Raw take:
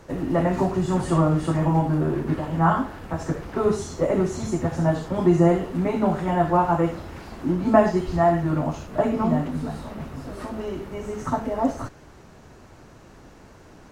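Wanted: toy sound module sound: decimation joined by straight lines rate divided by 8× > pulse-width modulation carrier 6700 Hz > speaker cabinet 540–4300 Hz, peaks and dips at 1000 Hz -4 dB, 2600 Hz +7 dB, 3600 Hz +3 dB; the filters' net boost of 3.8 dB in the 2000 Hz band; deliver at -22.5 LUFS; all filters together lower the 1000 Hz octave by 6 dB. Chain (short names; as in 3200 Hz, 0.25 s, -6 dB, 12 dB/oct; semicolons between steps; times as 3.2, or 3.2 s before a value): bell 1000 Hz -7 dB; bell 2000 Hz +6 dB; decimation joined by straight lines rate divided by 8×; pulse-width modulation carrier 6700 Hz; speaker cabinet 540–4300 Hz, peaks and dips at 1000 Hz -4 dB, 2600 Hz +7 dB, 3600 Hz +3 dB; gain +9 dB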